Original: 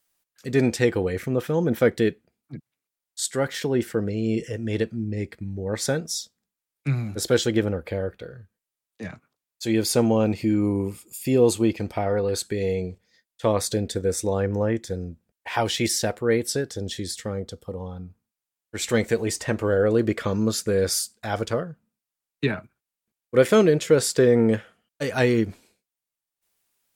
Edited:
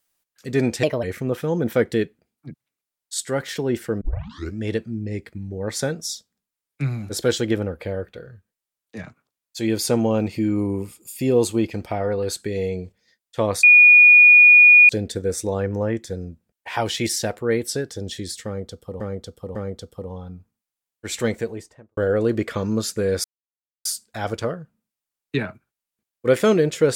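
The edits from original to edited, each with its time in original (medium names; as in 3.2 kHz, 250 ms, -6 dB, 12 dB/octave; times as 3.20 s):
0.83–1.09 s: speed 129%
4.07 s: tape start 0.59 s
13.69 s: add tone 2.45 kHz -6.5 dBFS 1.26 s
17.25–17.80 s: loop, 3 plays
18.79–19.67 s: studio fade out
20.94 s: insert silence 0.61 s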